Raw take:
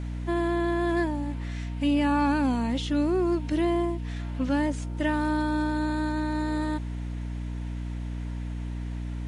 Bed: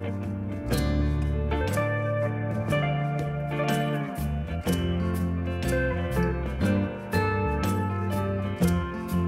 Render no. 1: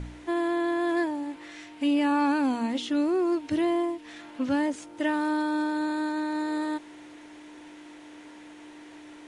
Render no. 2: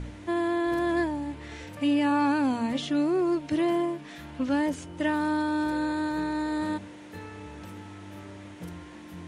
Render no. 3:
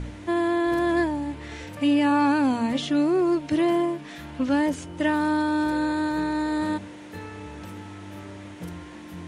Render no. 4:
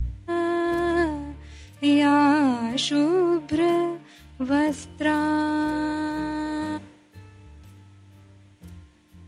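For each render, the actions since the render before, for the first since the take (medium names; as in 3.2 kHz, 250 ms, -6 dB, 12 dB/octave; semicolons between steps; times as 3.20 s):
de-hum 60 Hz, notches 4
add bed -18 dB
trim +3.5 dB
upward compressor, threshold -42 dBFS; three bands expanded up and down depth 100%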